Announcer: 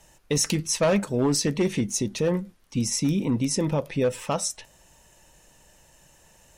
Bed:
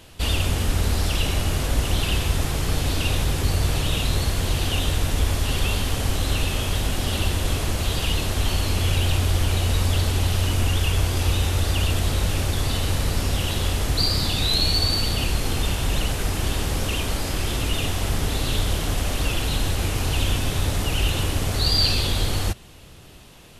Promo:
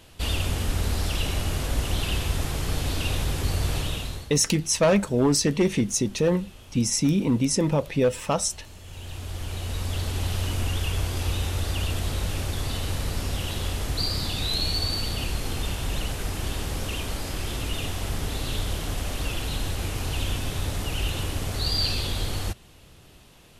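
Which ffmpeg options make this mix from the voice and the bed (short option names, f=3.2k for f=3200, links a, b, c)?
-filter_complex "[0:a]adelay=4000,volume=2dB[a];[1:a]volume=13.5dB,afade=t=out:st=3.78:d=0.53:silence=0.112202,afade=t=in:st=8.84:d=1.48:silence=0.133352[b];[a][b]amix=inputs=2:normalize=0"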